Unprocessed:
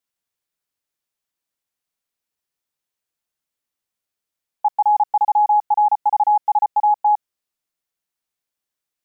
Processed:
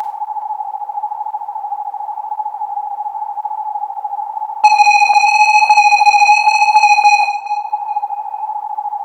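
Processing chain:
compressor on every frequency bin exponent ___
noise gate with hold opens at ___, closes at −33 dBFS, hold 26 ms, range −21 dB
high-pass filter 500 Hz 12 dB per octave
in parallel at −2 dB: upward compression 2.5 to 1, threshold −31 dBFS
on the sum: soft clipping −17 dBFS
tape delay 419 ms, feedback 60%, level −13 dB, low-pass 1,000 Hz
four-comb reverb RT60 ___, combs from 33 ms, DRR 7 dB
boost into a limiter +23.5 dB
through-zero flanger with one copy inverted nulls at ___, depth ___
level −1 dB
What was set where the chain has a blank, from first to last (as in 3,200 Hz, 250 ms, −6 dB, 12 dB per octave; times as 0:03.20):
0.2, −23 dBFS, 0.52 s, 1.9 Hz, 4.3 ms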